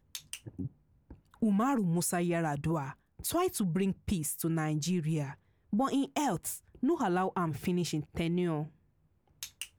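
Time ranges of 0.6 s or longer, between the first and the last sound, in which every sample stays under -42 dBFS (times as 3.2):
8.67–9.43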